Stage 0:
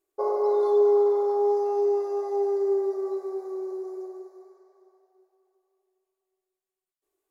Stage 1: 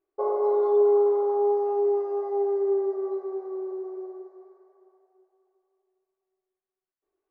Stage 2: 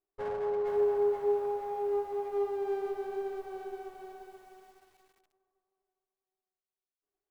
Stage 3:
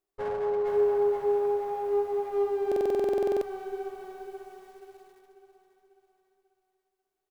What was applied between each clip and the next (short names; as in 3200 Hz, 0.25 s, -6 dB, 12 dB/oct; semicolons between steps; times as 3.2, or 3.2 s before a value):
LPF 1900 Hz 12 dB/oct
minimum comb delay 9.7 ms; lo-fi delay 0.479 s, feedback 35%, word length 9-bit, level -4 dB; gain -8.5 dB
on a send: feedback echo 0.543 s, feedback 46%, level -12 dB; on the sum: stuck buffer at 2.67, samples 2048, times 15; gain +3.5 dB